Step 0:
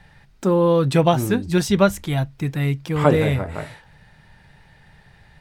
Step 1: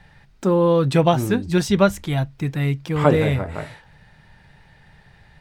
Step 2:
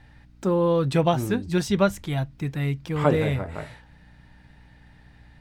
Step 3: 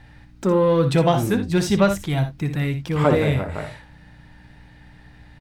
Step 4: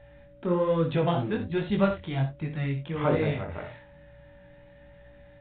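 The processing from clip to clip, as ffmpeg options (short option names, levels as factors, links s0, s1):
-af "equalizer=f=12000:w=0.77:g=-4"
-af "aeval=exprs='val(0)+0.00447*(sin(2*PI*60*n/s)+sin(2*PI*2*60*n/s)/2+sin(2*PI*3*60*n/s)/3+sin(2*PI*4*60*n/s)/4+sin(2*PI*5*60*n/s)/5)':c=same,volume=0.596"
-filter_complex "[0:a]asplit=2[s0][s1];[s1]asoftclip=type=tanh:threshold=0.106,volume=0.708[s2];[s0][s2]amix=inputs=2:normalize=0,aecho=1:1:60|80:0.335|0.158"
-af "flanger=delay=18.5:depth=5.2:speed=1.2,aresample=8000,aresample=44100,aeval=exprs='val(0)+0.00398*sin(2*PI*570*n/s)':c=same,volume=0.596"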